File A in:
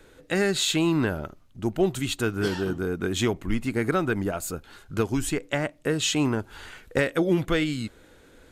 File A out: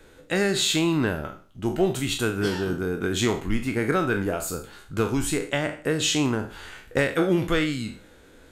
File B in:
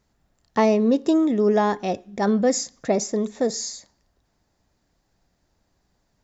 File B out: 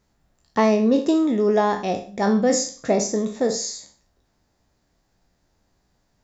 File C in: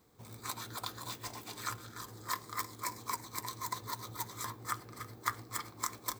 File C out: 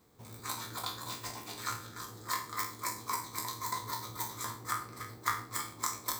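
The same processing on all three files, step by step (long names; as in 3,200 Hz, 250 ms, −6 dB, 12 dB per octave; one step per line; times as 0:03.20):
peak hold with a decay on every bin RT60 0.39 s
four-comb reverb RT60 0.38 s, combs from 29 ms, DRR 15 dB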